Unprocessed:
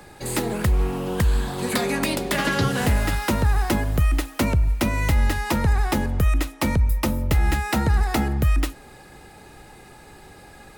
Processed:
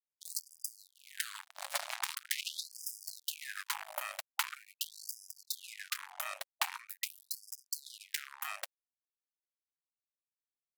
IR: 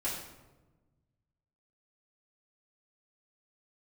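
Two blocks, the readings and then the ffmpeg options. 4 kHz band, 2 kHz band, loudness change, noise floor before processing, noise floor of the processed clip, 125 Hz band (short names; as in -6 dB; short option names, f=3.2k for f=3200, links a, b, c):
-8.5 dB, -14.0 dB, -17.0 dB, -46 dBFS, under -85 dBFS, under -40 dB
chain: -af "acompressor=threshold=-33dB:ratio=2.5,acrusher=bits=3:mix=0:aa=0.5,afftfilt=real='re*gte(b*sr/1024,540*pow(4900/540,0.5+0.5*sin(2*PI*0.43*pts/sr)))':imag='im*gte(b*sr/1024,540*pow(4900/540,0.5+0.5*sin(2*PI*0.43*pts/sr)))':win_size=1024:overlap=0.75,volume=2dB"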